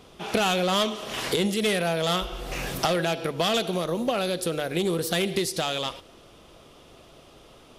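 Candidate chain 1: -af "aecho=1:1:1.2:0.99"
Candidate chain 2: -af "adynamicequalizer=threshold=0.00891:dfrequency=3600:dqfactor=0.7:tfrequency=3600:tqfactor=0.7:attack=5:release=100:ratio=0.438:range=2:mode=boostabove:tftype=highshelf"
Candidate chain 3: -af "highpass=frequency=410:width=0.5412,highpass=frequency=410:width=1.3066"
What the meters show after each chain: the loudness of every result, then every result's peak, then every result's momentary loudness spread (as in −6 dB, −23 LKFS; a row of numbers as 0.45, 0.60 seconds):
−23.5, −25.0, −27.5 LKFS; −8.5, −11.0, −9.5 dBFS; 7, 6, 6 LU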